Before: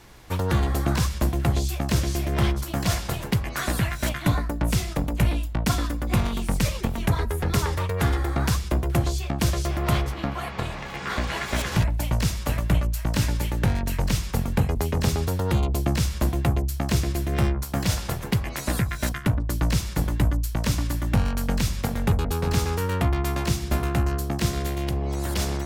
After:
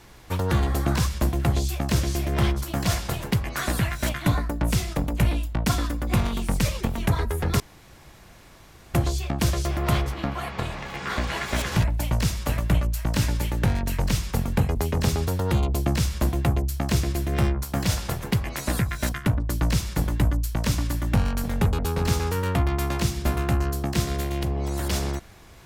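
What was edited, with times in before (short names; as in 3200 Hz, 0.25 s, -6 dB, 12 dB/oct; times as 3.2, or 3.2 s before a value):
7.6–8.94 room tone
21.44–21.9 cut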